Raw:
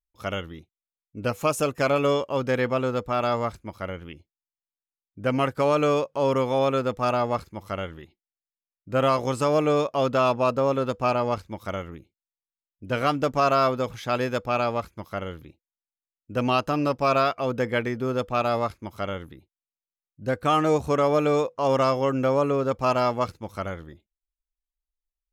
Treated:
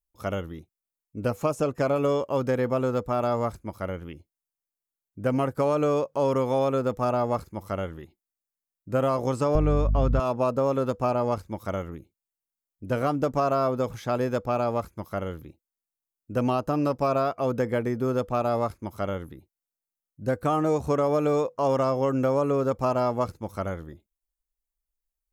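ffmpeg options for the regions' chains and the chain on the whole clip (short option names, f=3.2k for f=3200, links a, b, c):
-filter_complex "[0:a]asettb=1/sr,asplit=3[a][b][c];[a]atrim=end=9.554[d];[b]atrim=start=9.55:end=10.2,asetpts=PTS-STARTPTS,afade=t=in:d=0.004:c=qsin,afade=t=out:st=0.646:d=0.004:c=qsin,agate=range=-33dB:threshold=-37dB:ratio=3:release=100:detection=peak,aeval=exprs='val(0)+0.0282*(sin(2*PI*50*n/s)+sin(2*PI*2*50*n/s)/2+sin(2*PI*3*50*n/s)/3+sin(2*PI*4*50*n/s)/4+sin(2*PI*5*50*n/s)/5)':c=same,aemphasis=mode=reproduction:type=riaa[e];[c]atrim=start=10.196[f];[d][e]acrossfade=d=0.004:c1=hsin:c2=qsin[g];[g][f]acrossfade=d=0.004:c1=qsin:c2=hsin,highshelf=f=4.7k:g=5,acrossover=split=1100|6400[h][i][j];[h]acompressor=threshold=-22dB:ratio=4[k];[i]acompressor=threshold=-34dB:ratio=4[l];[j]acompressor=threshold=-55dB:ratio=4[m];[k][l][m]amix=inputs=3:normalize=0,equalizer=f=3.2k:w=0.67:g=-9,volume=2dB"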